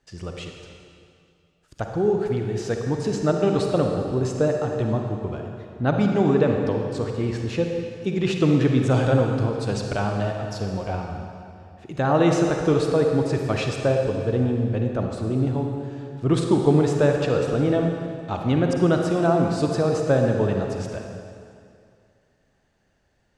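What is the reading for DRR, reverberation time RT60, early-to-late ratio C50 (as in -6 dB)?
2.0 dB, 2.4 s, 2.5 dB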